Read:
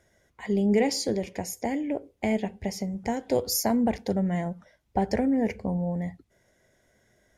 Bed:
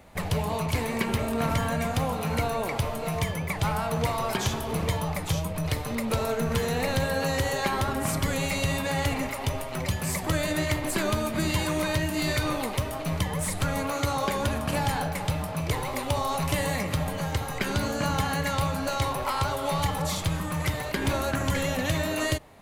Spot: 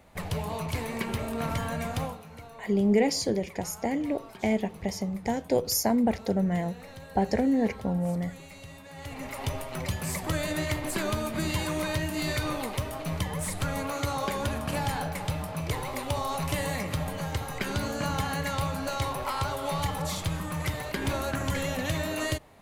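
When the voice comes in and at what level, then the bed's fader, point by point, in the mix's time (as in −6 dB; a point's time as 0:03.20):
2.20 s, 0.0 dB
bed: 0:02.05 −4.5 dB
0:02.25 −19 dB
0:08.90 −19 dB
0:09.39 −3 dB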